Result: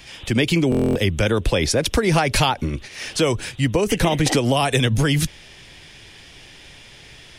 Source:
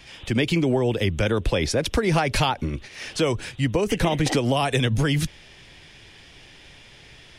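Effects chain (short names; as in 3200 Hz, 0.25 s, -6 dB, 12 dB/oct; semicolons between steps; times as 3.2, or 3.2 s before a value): high shelf 6300 Hz +6.5 dB; stuck buffer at 0.7, samples 1024, times 10; gain +3 dB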